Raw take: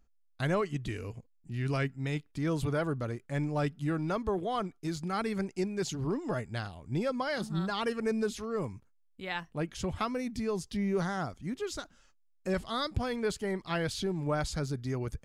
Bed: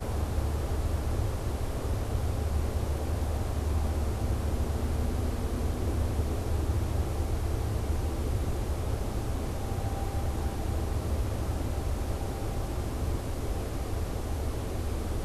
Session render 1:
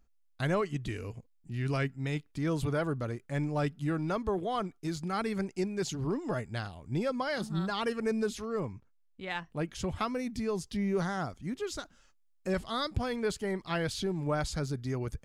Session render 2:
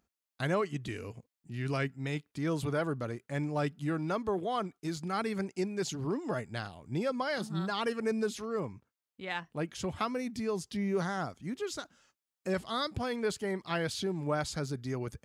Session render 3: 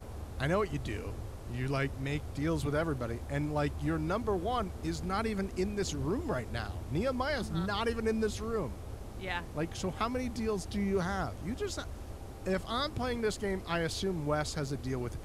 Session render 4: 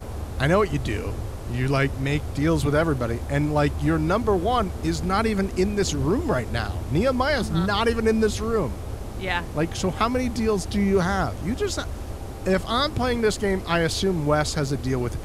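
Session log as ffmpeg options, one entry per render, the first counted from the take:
ffmpeg -i in.wav -filter_complex "[0:a]asettb=1/sr,asplit=3[link_01][link_02][link_03];[link_01]atrim=end=8.604[link_04];[link_02]atrim=start=8.6:end=9.5,asetpts=PTS-STARTPTS,afade=type=in:duration=0.004:curve=qsin,afade=type=out:start_time=0.896:duration=0.004:curve=qsin,adynamicsmooth=sensitivity=4.5:basefreq=5600[link_05];[link_03]atrim=start=9.496[link_06];[link_04][link_05]acrossfade=duration=0.004:curve1=hsin:curve2=qsin[link_07];[link_07][link_06]acrossfade=duration=0.004:curve1=qsin:curve2=hsin" out.wav
ffmpeg -i in.wav -af "highpass=83,lowshelf=frequency=130:gain=-5" out.wav
ffmpeg -i in.wav -i bed.wav -filter_complex "[1:a]volume=-12dB[link_01];[0:a][link_01]amix=inputs=2:normalize=0" out.wav
ffmpeg -i in.wav -af "volume=10.5dB" out.wav

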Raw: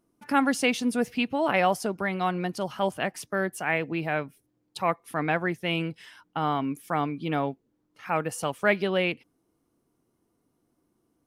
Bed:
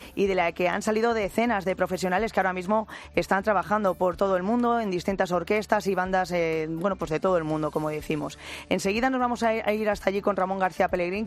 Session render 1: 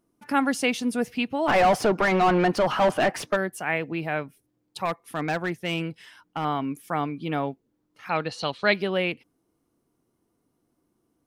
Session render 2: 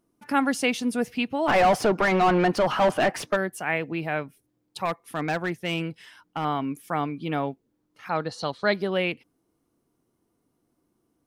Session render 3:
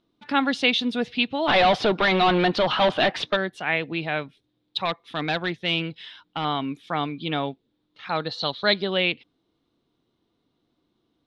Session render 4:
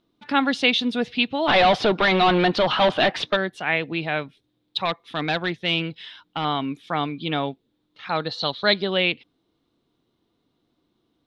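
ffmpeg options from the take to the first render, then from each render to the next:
ffmpeg -i in.wav -filter_complex "[0:a]asplit=3[link_01][link_02][link_03];[link_01]afade=type=out:start_time=1.47:duration=0.02[link_04];[link_02]asplit=2[link_05][link_06];[link_06]highpass=frequency=720:poles=1,volume=28dB,asoftclip=type=tanh:threshold=-10.5dB[link_07];[link_05][link_07]amix=inputs=2:normalize=0,lowpass=frequency=1200:poles=1,volume=-6dB,afade=type=in:start_time=1.47:duration=0.02,afade=type=out:start_time=3.35:duration=0.02[link_08];[link_03]afade=type=in:start_time=3.35:duration=0.02[link_09];[link_04][link_08][link_09]amix=inputs=3:normalize=0,asettb=1/sr,asplit=3[link_10][link_11][link_12];[link_10]atrim=end=4.854[link_13];[link_11]atrim=start=4.85:end=6.45,asetpts=PTS-STARTPTS,afade=type=in:duration=0.004:curve=qsin,afade=type=out:start_time=1.596:duration=0.004:curve=qsin,asoftclip=type=hard:threshold=-20.5dB[link_14];[link_12]atrim=start=6.446[link_15];[link_13][link_14]acrossfade=duration=0.004:curve1=hsin:curve2=qsin[link_16];[link_16][link_15]acrossfade=duration=0.004:curve1=qsin:curve2=hsin,asettb=1/sr,asplit=3[link_17][link_18][link_19];[link_17]atrim=end=8.094[link_20];[link_18]atrim=start=8.09:end=8.74,asetpts=PTS-STARTPTS,afade=type=in:duration=0.004:curve=qsin,afade=type=out:start_time=0.646:duration=0.004:curve=qsin,lowpass=frequency=4100:width_type=q:width=13[link_21];[link_19]atrim=start=8.736[link_22];[link_20][link_21]acrossfade=duration=0.004:curve1=hsin:curve2=qsin[link_23];[link_23][link_22]acrossfade=duration=0.004:curve1=qsin:curve2=hsin" out.wav
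ffmpeg -i in.wav -filter_complex "[0:a]asettb=1/sr,asplit=3[link_01][link_02][link_03];[link_01]atrim=end=8.084[link_04];[link_02]atrim=start=8.08:end=8.92,asetpts=PTS-STARTPTS,afade=type=in:duration=0.004:curve=qsin,afade=type=out:start_time=0.836:duration=0.004:curve=qsin,equalizer=frequency=2600:width_type=o:width=0.61:gain=-12[link_05];[link_03]atrim=start=8.916[link_06];[link_04][link_05]acrossfade=duration=0.004:curve1=hsin:curve2=qsin[link_07];[link_07][link_06]acrossfade=duration=0.004:curve1=qsin:curve2=hsin" out.wav
ffmpeg -i in.wav -af "lowpass=frequency=3700:width_type=q:width=6.3" out.wav
ffmpeg -i in.wav -af "volume=1.5dB" out.wav

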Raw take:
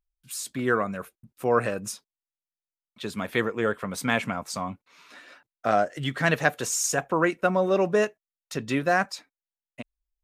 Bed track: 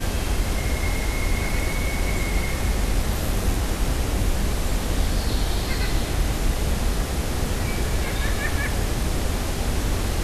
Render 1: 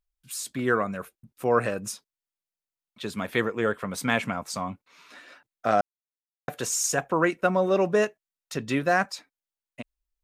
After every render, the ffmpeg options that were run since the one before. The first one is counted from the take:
ffmpeg -i in.wav -filter_complex "[0:a]asplit=3[link_01][link_02][link_03];[link_01]atrim=end=5.81,asetpts=PTS-STARTPTS,afade=type=out:start_time=5.806:duration=0.004:curve=hsin[link_04];[link_02]atrim=start=5.81:end=6.48,asetpts=PTS-STARTPTS,volume=0[link_05];[link_03]atrim=start=6.48,asetpts=PTS-STARTPTS,afade=type=in:duration=0.004:curve=hsin[link_06];[link_04][link_05][link_06]concat=n=3:v=0:a=1" out.wav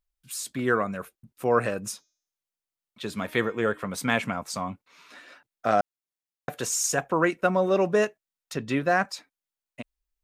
ffmpeg -i in.wav -filter_complex "[0:a]asettb=1/sr,asplit=3[link_01][link_02][link_03];[link_01]atrim=end=1.914[link_04];[link_02]atrim=start=1.91:end=3.88,asetpts=PTS-STARTPTS,afade=type=in:duration=0.004:curve=qsin,afade=type=out:start_time=1.966:duration=0.004:curve=qsin,bandreject=frequency=309.1:width_type=h:width=4,bandreject=frequency=618.2:width_type=h:width=4,bandreject=frequency=927.3:width_type=h:width=4,bandreject=frequency=1236.4:width_type=h:width=4,bandreject=frequency=1545.5:width_type=h:width=4,bandreject=frequency=1854.6:width_type=h:width=4,bandreject=frequency=2163.7:width_type=h:width=4,bandreject=frequency=2472.8:width_type=h:width=4,bandreject=frequency=2781.9:width_type=h:width=4,bandreject=frequency=3091:width_type=h:width=4,bandreject=frequency=3400.1:width_type=h:width=4,bandreject=frequency=3709.2:width_type=h:width=4,bandreject=frequency=4018.3:width_type=h:width=4,bandreject=frequency=4327.4:width_type=h:width=4,bandreject=frequency=4636.5:width_type=h:width=4,bandreject=frequency=4945.6:width_type=h:width=4,bandreject=frequency=5254.7:width_type=h:width=4,bandreject=frequency=5563.8:width_type=h:width=4,bandreject=frequency=5872.9:width_type=h:width=4,bandreject=frequency=6182:width_type=h:width=4,bandreject=frequency=6491.1:width_type=h:width=4,bandreject=frequency=6800.2:width_type=h:width=4,bandreject=frequency=7109.3:width_type=h:width=4[link_05];[link_03]atrim=start=3.876[link_06];[link_04][link_05]acrossfade=duration=0.004:curve1=hsin:curve2=qsin[link_07];[link_07][link_06]acrossfade=duration=0.004:curve1=qsin:curve2=hsin,asettb=1/sr,asplit=3[link_08][link_09][link_10];[link_08]atrim=end=8.534[link_11];[link_09]atrim=start=8.53:end=9.05,asetpts=PTS-STARTPTS,afade=type=in:duration=0.004:curve=qsin,afade=type=out:start_time=0.516:duration=0.004:curve=qsin,highshelf=frequency=5200:gain=-7[link_12];[link_10]atrim=start=9.046[link_13];[link_11][link_12]acrossfade=duration=0.004:curve1=hsin:curve2=qsin[link_14];[link_14][link_13]acrossfade=duration=0.004:curve1=qsin:curve2=hsin" out.wav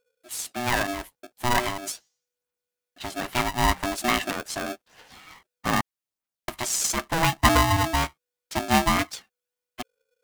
ffmpeg -i in.wav -af "aphaser=in_gain=1:out_gain=1:delay=1.1:decay=0.52:speed=0.8:type=triangular,aeval=exprs='val(0)*sgn(sin(2*PI*490*n/s))':channel_layout=same" out.wav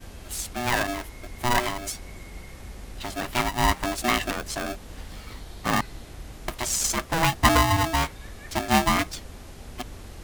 ffmpeg -i in.wav -i bed.wav -filter_complex "[1:a]volume=-17.5dB[link_01];[0:a][link_01]amix=inputs=2:normalize=0" out.wav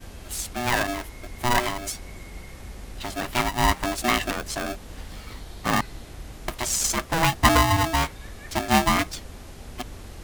ffmpeg -i in.wav -af "volume=1dB" out.wav

